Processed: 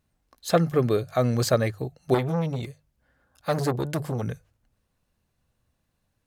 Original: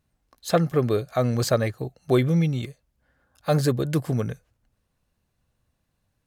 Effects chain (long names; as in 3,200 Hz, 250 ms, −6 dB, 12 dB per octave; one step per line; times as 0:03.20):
mains-hum notches 50/100/150 Hz
0:02.14–0:04.23: saturating transformer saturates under 810 Hz